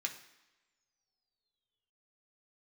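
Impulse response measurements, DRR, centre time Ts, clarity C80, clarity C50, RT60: 2.0 dB, 15 ms, 13.0 dB, 10.5 dB, not exponential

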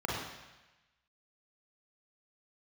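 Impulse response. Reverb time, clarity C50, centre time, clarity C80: 1.1 s, -1.0 dB, 76 ms, 2.5 dB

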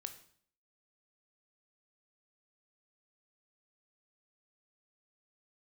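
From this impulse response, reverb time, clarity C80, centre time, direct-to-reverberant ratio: 0.55 s, 15.0 dB, 9 ms, 7.5 dB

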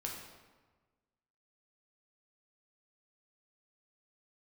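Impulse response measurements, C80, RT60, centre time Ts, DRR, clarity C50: 5.5 dB, 1.3 s, 53 ms, -1.5 dB, 3.0 dB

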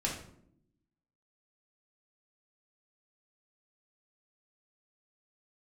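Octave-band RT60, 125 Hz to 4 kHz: 1.1, 1.2, 0.85, 0.60, 0.50, 0.40 s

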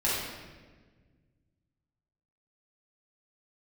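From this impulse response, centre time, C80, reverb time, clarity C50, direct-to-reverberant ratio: 90 ms, 1.5 dB, 1.4 s, -1.5 dB, -8.5 dB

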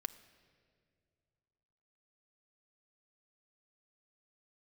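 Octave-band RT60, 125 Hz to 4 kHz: 3.1, 2.5, 2.6, 1.8, 1.8, 1.5 s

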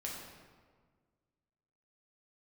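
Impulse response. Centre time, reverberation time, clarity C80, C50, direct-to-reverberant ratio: 73 ms, 1.6 s, 3.0 dB, 1.5 dB, -3.5 dB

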